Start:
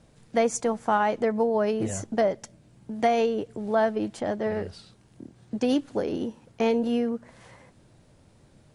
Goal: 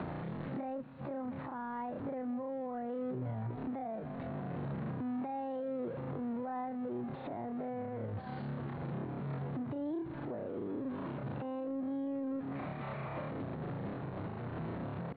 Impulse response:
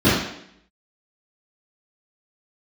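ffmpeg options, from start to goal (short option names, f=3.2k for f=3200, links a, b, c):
-filter_complex "[0:a]aeval=exprs='val(0)+0.5*0.0422*sgn(val(0))':c=same,asplit=2[a][b];[b]aecho=0:1:980|1960|2940:0.075|0.0285|0.0108[c];[a][c]amix=inputs=2:normalize=0,acrossover=split=140[d][e];[e]acompressor=threshold=-36dB:ratio=6[f];[d][f]amix=inputs=2:normalize=0,aresample=8000,aresample=44100,asetrate=88200,aresample=44100,atempo=0.5,acrossover=split=170 3100:gain=0.0708 1 0.1[g][h][i];[g][h][i]amix=inputs=3:normalize=0,alimiter=level_in=9dB:limit=-24dB:level=0:latency=1:release=81,volume=-9dB,asetrate=25442,aresample=44100,volume=1.5dB"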